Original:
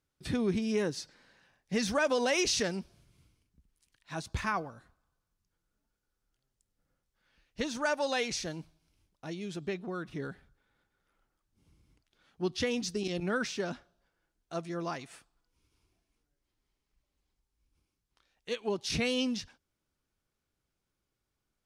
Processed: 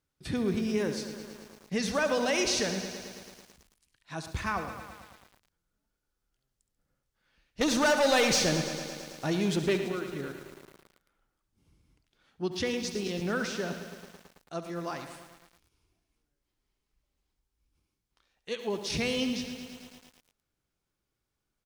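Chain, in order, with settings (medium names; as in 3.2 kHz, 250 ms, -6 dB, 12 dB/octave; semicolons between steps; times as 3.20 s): 7.61–9.78 s: waveshaping leveller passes 3; feedback delay 69 ms, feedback 53%, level -12.5 dB; bit-crushed delay 110 ms, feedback 80%, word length 8-bit, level -10.5 dB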